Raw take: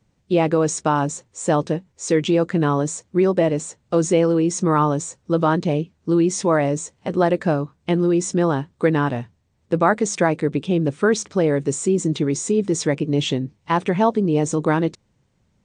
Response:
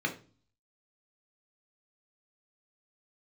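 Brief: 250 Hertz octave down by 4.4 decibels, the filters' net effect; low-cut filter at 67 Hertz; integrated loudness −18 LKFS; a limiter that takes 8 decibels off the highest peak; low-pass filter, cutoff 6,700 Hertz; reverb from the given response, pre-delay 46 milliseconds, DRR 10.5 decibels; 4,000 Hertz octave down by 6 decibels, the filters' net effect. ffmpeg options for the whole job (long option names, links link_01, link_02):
-filter_complex "[0:a]highpass=67,lowpass=6700,equalizer=frequency=250:width_type=o:gain=-7,equalizer=frequency=4000:width_type=o:gain=-8,alimiter=limit=-12dB:level=0:latency=1,asplit=2[link_01][link_02];[1:a]atrim=start_sample=2205,adelay=46[link_03];[link_02][link_03]afir=irnorm=-1:irlink=0,volume=-17.5dB[link_04];[link_01][link_04]amix=inputs=2:normalize=0,volume=5.5dB"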